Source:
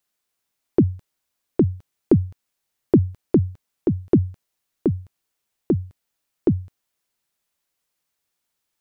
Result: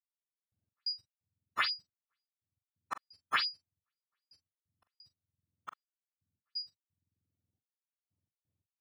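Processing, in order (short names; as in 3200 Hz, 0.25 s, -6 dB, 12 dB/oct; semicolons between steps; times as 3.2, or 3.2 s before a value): spectrum mirrored in octaves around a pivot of 670 Hz; reverb removal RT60 0.87 s; step gate "...x.x.xxxx" 87 bpm -60 dB; doubler 43 ms -12 dB; gain -6.5 dB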